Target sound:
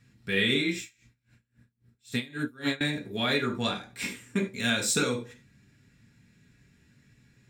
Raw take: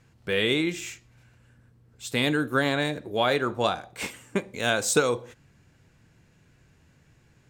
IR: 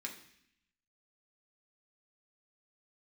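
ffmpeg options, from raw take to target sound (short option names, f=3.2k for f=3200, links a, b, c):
-filter_complex "[0:a]equalizer=f=830:w=0.84:g=-9[a];[1:a]atrim=start_sample=2205,atrim=end_sample=4410[b];[a][b]afir=irnorm=-1:irlink=0,asettb=1/sr,asplit=3[c][d][e];[c]atrim=end=0.804[f];[d]atrim=start=0.8:end=2.81,asetpts=PTS-STARTPTS,afade=t=in:d=0.004:c=qsin,afade=t=out:st=2.006:d=0.004:c=qsin,aeval=exprs='val(0)*pow(10,-26*(0.5-0.5*cos(2*PI*3.7*n/s))/20)':c=same[g];[e]atrim=start=2.806[h];[f][g]acrossfade=d=0.004:c1=hsin:c2=qsin[i];[i][h]acrossfade=d=0.004:c1=qsin:c2=hsin,volume=2.5dB"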